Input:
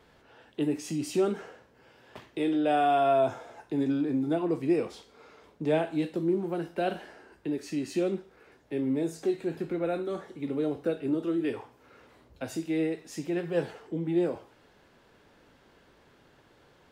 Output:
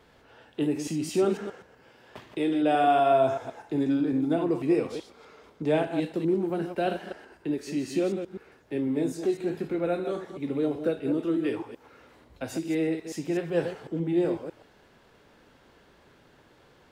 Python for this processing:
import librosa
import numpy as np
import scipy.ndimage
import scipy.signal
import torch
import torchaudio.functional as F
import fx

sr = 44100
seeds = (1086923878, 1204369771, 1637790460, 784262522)

y = fx.reverse_delay(x, sr, ms=125, wet_db=-8.0)
y = y * 10.0 ** (1.5 / 20.0)